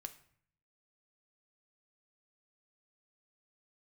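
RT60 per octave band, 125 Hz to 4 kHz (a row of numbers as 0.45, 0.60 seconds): 0.95, 0.80, 0.60, 0.60, 0.60, 0.45 seconds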